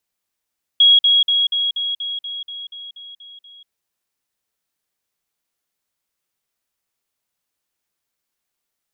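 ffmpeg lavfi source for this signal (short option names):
-f lavfi -i "aevalsrc='pow(10,(-7.5-3*floor(t/0.24))/20)*sin(2*PI*3310*t)*clip(min(mod(t,0.24),0.19-mod(t,0.24))/0.005,0,1)':d=2.88:s=44100"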